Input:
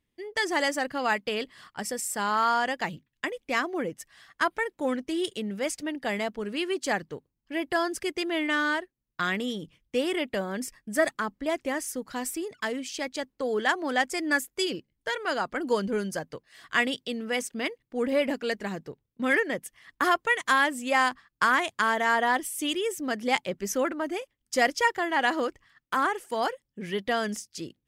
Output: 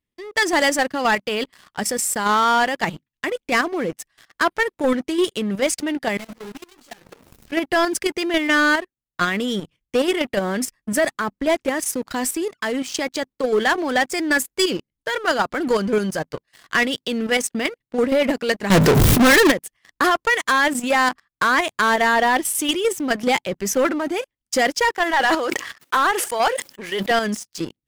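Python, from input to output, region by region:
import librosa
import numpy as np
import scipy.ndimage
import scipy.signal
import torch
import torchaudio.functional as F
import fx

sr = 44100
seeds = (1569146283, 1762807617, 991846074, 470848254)

y = fx.chain(x, sr, fx.zero_step(step_db=-38.0),
    fx.tube_stage(drive_db=42.0, bias=0.4),
    fx.ensemble(), at=(6.17, 7.52))
y = fx.chain(y, sr, fx.power_curve(exponent=0.5),
    fx.env_flatten(amount_pct=100), at=(18.7, 19.52))
y = fx.chain(y, sr, fx.highpass(hz=410.0, slope=12),
    fx.sustainer(db_per_s=66.0), at=(24.95, 27.11))
y = fx.level_steps(y, sr, step_db=9)
y = fx.leveller(y, sr, passes=3)
y = y * 10.0 ** (2.0 / 20.0)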